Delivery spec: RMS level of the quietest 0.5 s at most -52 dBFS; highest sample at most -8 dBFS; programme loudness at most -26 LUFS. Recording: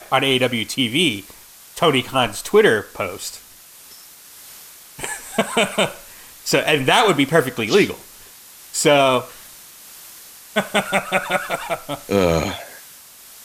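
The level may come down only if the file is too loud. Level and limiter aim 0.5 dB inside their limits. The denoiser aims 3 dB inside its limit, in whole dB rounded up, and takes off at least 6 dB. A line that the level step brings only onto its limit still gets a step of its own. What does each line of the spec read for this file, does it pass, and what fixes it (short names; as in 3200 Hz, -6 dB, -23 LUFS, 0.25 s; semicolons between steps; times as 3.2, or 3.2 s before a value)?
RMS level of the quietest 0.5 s -44 dBFS: fail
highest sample -3.5 dBFS: fail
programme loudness -18.5 LUFS: fail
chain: denoiser 6 dB, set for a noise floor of -44 dBFS; gain -8 dB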